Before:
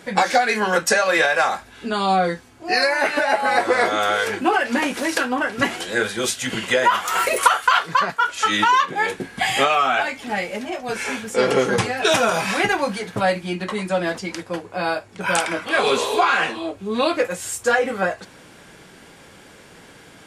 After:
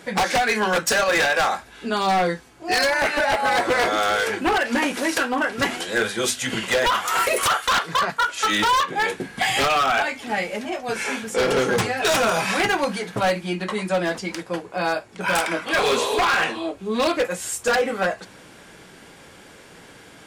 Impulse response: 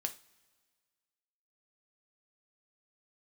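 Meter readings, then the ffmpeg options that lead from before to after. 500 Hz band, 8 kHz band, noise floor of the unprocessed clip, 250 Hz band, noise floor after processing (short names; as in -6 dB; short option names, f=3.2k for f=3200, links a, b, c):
-1.5 dB, 0.0 dB, -46 dBFS, -1.0 dB, -47 dBFS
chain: -af "bandreject=f=50:t=h:w=6,bandreject=f=100:t=h:w=6,bandreject=f=150:t=h:w=6,bandreject=f=200:t=h:w=6,bandreject=f=250:t=h:w=6,aeval=exprs='0.211*(abs(mod(val(0)/0.211+3,4)-2)-1)':c=same"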